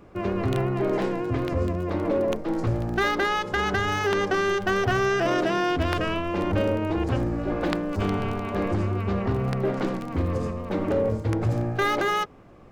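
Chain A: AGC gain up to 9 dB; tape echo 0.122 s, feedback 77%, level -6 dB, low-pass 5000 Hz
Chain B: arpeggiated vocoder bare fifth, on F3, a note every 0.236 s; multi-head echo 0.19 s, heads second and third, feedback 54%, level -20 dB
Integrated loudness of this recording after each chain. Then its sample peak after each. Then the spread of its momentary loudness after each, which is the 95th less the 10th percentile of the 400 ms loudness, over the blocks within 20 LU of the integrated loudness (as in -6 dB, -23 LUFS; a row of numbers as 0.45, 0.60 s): -16.5, -26.5 LUFS; -1.5, -11.5 dBFS; 6, 4 LU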